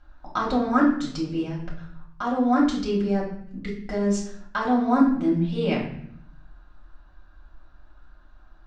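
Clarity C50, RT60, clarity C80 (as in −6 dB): 5.5 dB, 0.65 s, 9.0 dB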